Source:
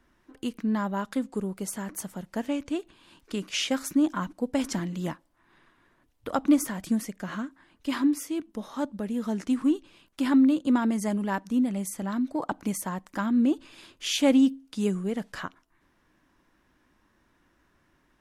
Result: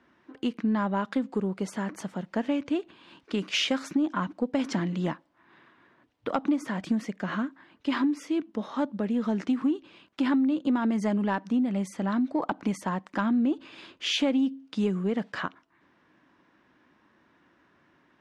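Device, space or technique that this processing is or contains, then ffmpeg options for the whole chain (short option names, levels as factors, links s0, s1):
AM radio: -filter_complex "[0:a]asettb=1/sr,asplit=3[s0][s1][s2];[s0]atrim=end=3.384[s3];[s1]atrim=start=3.38:end=3.84,asetpts=PTS-STARTPTS,afade=t=in:d=0.004:c=qsin,afade=t=out:st=0.456:d=0.004:c=qsin,highshelf=f=4300:g=5.5[s4];[s2]atrim=start=3.836[s5];[s3][s4]acrossfade=d=0.004:c1=hsin:c2=qsin[s6];[s6][s5]acrossfade=d=0.004:c1=qsin:c2=hsin,highpass=140,lowpass=3800,acompressor=threshold=0.0501:ratio=6,asoftclip=type=tanh:threshold=0.133,volume=1.68"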